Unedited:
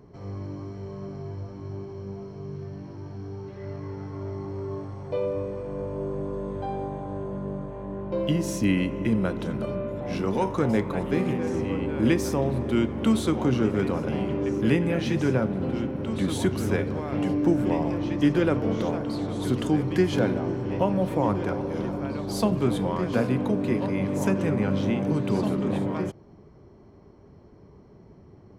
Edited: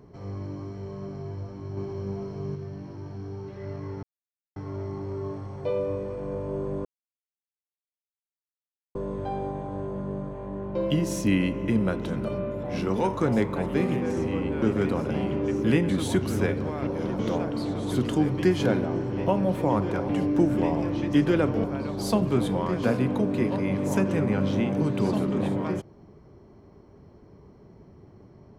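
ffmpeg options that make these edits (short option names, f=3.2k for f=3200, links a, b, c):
-filter_complex "[0:a]asplit=11[a][b][c][d][e][f][g][h][i][j][k];[a]atrim=end=1.772[l];[b]atrim=start=1.768:end=2.552,asetpts=PTS-STARTPTS,volume=4dB[m];[c]atrim=start=2.548:end=4.03,asetpts=PTS-STARTPTS,afade=t=out:st=1.478:d=0.004:c=hsin,apad=pad_dur=0.53[n];[d]atrim=start=4.03:end=6.32,asetpts=PTS-STARTPTS,afade=t=in:d=0.004:c=hsin,afade=t=out:st=2.286:d=0.004:c=hsin,apad=pad_dur=2.1[o];[e]atrim=start=6.32:end=11.992,asetpts=PTS-STARTPTS,afade=t=in:d=0.004:c=hsin[p];[f]atrim=start=13.598:end=14.872[q];[g]atrim=start=16.188:end=17.172[r];[h]atrim=start=21.618:end=21.942[s];[i]atrim=start=18.718:end=21.622[t];[j]atrim=start=17.168:end=18.722[u];[k]atrim=start=21.938[v];[l][m]acrossfade=d=0.004:c1=hsin:c2=hsin[w];[n][o][p]concat=n=3:v=0:a=1[x];[w][x]acrossfade=d=0.004:c1=hsin:c2=hsin[y];[y][q]acrossfade=d=0.004:c1=hsin:c2=hsin[z];[z][r]acrossfade=d=0.004:c1=hsin:c2=hsin[aa];[aa][s]acrossfade=d=0.004:c1=hsin:c2=hsin[ab];[ab][t]acrossfade=d=0.004:c1=hsin:c2=hsin[ac];[ac][u]acrossfade=d=0.004:c1=hsin:c2=hsin[ad];[ad][v]acrossfade=d=0.004:c1=hsin:c2=hsin"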